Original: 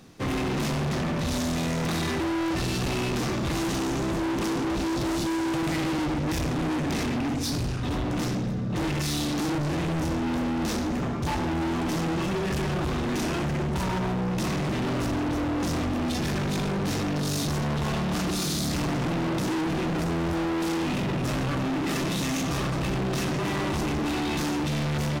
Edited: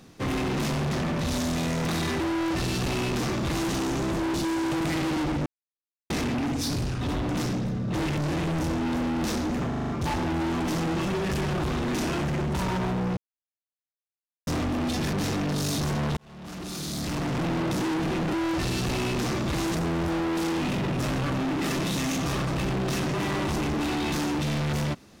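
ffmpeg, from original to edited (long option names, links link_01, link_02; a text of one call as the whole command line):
ffmpeg -i in.wav -filter_complex "[0:a]asplit=16[link_01][link_02][link_03][link_04][link_05][link_06][link_07][link_08][link_09][link_10][link_11][link_12][link_13][link_14][link_15][link_16];[link_01]atrim=end=4.342[link_17];[link_02]atrim=start=5.158:end=6.28,asetpts=PTS-STARTPTS,afade=type=out:start_time=1.118:duration=0.004:curve=hsin[link_18];[link_03]atrim=start=6.28:end=6.92,asetpts=PTS-STARTPTS,volume=0[link_19];[link_04]atrim=start=6.92:end=9.002,asetpts=PTS-STARTPTS,afade=type=in:duration=0.004:curve=hsin[link_20];[link_05]atrim=start=9.588:end=11.142[link_21];[link_06]atrim=start=11.098:end=11.142[link_22];[link_07]atrim=start=11.098:end=11.142[link_23];[link_08]atrim=start=11.098:end=11.142[link_24];[link_09]atrim=start=11.098:end=11.142[link_25];[link_10]atrim=start=11.098:end=14.38,asetpts=PTS-STARTPTS,afade=type=out:start_time=3.278:duration=0.004:curve=hsin[link_26];[link_11]atrim=start=14.38:end=15.68,asetpts=PTS-STARTPTS,volume=0[link_27];[link_12]atrim=start=15.68:end=16.342,asetpts=PTS-STARTPTS,afade=type=in:duration=0.004:curve=hsin[link_28];[link_13]atrim=start=16.798:end=17.84,asetpts=PTS-STARTPTS,afade=type=out:start_time=1.038:duration=0.004:curve=hsin[link_29];[link_14]atrim=start=17.84:end=20.002,asetpts=PTS-STARTPTS,afade=type=in:duration=1.28[link_30];[link_15]atrim=start=2.298:end=3.722[link_31];[link_16]atrim=start=19.998[link_32];[link_18][link_19][link_20]concat=n=3:v=0:a=1[link_33];[link_17][link_33]acrossfade=duration=0.004:curve1=hsin:curve2=hsin[link_34];[link_34][link_21]acrossfade=duration=0.004:curve1=hsin:curve2=hsin[link_35];[link_35][link_22]acrossfade=duration=0.004:curve1=hsin:curve2=hsin[link_36];[link_36][link_23]acrossfade=duration=0.004:curve1=hsin:curve2=hsin[link_37];[link_37][link_24]acrossfade=duration=0.004:curve1=hsin:curve2=hsin[link_38];[link_38][link_25]acrossfade=duration=0.004:curve1=hsin:curve2=hsin[link_39];[link_26][link_27][link_28]concat=n=3:v=0:a=1[link_40];[link_39][link_40]acrossfade=duration=0.004:curve1=hsin:curve2=hsin[link_41];[link_29][link_30]concat=n=2:v=0:a=1[link_42];[link_41][link_42]acrossfade=duration=0.004:curve1=hsin:curve2=hsin[link_43];[link_43][link_31]acrossfade=duration=0.004:curve1=hsin:curve2=hsin[link_44];[link_44][link_32]acrossfade=duration=0.004:curve1=hsin:curve2=hsin" out.wav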